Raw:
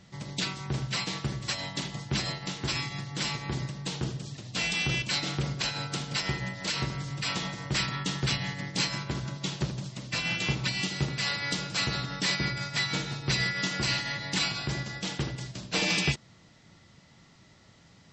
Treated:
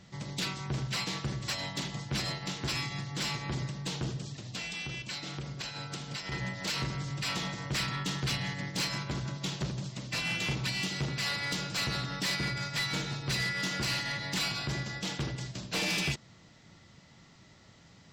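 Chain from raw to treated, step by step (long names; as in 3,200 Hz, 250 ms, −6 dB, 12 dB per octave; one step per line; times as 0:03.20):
0:04.21–0:06.32: downward compressor 5 to 1, threshold −36 dBFS, peak gain reduction 10 dB
soft clipping −26.5 dBFS, distortion −13 dB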